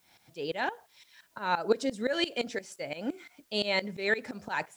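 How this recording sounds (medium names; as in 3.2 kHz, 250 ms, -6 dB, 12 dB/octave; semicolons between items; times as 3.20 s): tremolo saw up 5.8 Hz, depth 90%; a quantiser's noise floor 12-bit, dither triangular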